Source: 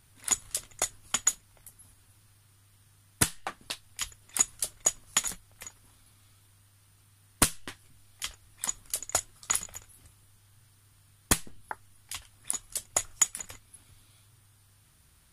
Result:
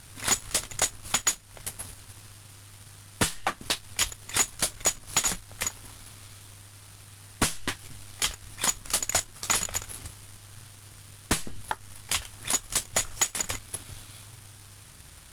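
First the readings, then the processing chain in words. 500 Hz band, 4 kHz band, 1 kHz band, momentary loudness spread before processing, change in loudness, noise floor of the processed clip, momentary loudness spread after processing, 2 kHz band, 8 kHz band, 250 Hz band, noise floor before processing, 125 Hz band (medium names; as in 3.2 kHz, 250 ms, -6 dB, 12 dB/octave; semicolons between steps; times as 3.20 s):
+5.0 dB, +6.5 dB, +5.5 dB, 17 LU, +2.0 dB, -50 dBFS, 22 LU, +6.0 dB, +2.0 dB, +3.5 dB, -62 dBFS, +4.5 dB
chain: CVSD coder 64 kbps; compression 2:1, threshold -41 dBFS, peak gain reduction 11.5 dB; waveshaping leveller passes 1; sine folder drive 6 dB, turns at -18.5 dBFS; trim +2.5 dB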